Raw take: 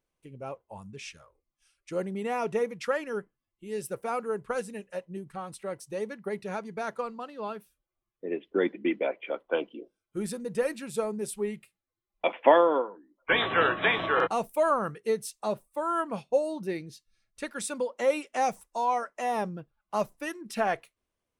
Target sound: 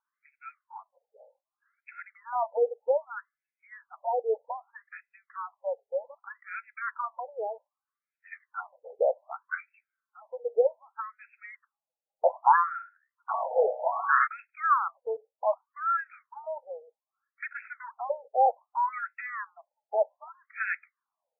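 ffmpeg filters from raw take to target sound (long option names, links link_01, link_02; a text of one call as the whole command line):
ffmpeg -i in.wav -filter_complex "[0:a]asettb=1/sr,asplit=3[link_01][link_02][link_03];[link_01]atrim=end=17.484[link_04];[link_02]atrim=start=17.48:end=17.93,asetpts=PTS-STARTPTS,afade=type=in:duration=0.004:curve=qsin,afade=type=out:start_time=0.446:duration=0.004:curve=qsin,aeval=exprs='clip(val(0),-1,0.00944)':channel_layout=same[link_05];[link_03]atrim=start=17.926[link_06];[link_04][link_05]acrossfade=duration=0.004:curve1=hsin:curve2=qsin[link_07];[link_07][link_06]acrossfade=duration=0.004:curve1=qsin:curve2=hsin,asettb=1/sr,asplit=3[link_08][link_09][link_10];[link_08]atrim=end=18.464[link_11];[link_09]atrim=start=18.46:end=20.28,asetpts=PTS-STARTPTS,afade=type=in:duration=0.004:curve=qsin,afade=type=out:start_time=1.816:duration=0.004:curve=qsin,afreqshift=18[link_12];[link_10]atrim=start=20.276[link_13];[link_11][link_12]acrossfade=duration=0.004:curve1=hsin:curve2=qsin[link_14];[link_14][link_13]acrossfade=duration=0.004:curve1=qsin:curve2=hsin,afftfilt=real='re*between(b*sr/1024,600*pow(1900/600,0.5+0.5*sin(2*PI*0.64*pts/sr))/1.41,600*pow(1900/600,0.5+0.5*sin(2*PI*0.64*pts/sr))*1.41)':imag='im*between(b*sr/1024,600*pow(1900/600,0.5+0.5*sin(2*PI*0.64*pts/sr))/1.41,600*pow(1900/600,0.5+0.5*sin(2*PI*0.64*pts/sr))*1.41)':win_size=1024:overlap=0.75,volume=5dB" out.wav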